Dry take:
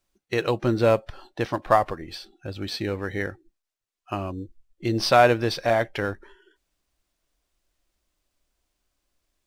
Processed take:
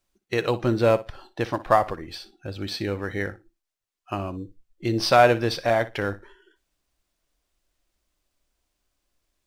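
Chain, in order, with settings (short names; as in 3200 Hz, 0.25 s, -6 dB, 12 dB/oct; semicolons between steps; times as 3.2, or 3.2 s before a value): flutter echo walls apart 10.2 m, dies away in 0.22 s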